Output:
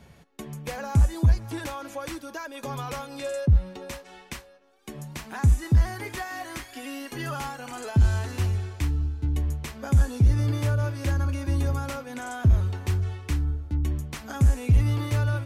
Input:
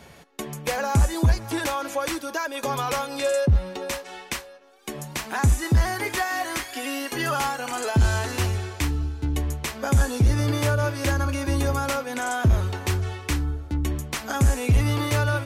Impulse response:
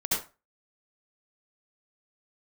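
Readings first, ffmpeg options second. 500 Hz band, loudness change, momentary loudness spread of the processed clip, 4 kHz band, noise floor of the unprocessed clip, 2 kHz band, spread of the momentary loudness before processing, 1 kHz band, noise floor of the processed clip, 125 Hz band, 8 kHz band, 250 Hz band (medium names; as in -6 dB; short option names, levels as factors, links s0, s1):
-8.0 dB, -1.5 dB, 15 LU, -9.0 dB, -45 dBFS, -8.5 dB, 10 LU, -8.5 dB, -52 dBFS, 0.0 dB, -9.5 dB, -4.0 dB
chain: -af "bass=f=250:g=9,treble=f=4000:g=-1,volume=0.376"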